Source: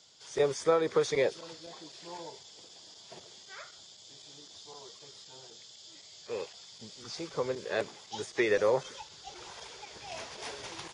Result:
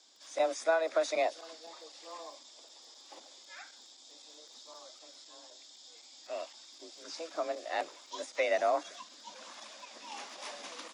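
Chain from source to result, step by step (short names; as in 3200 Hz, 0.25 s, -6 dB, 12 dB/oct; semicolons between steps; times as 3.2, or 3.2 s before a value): crackle 20/s -50 dBFS; frequency shift +160 Hz; gain -2.5 dB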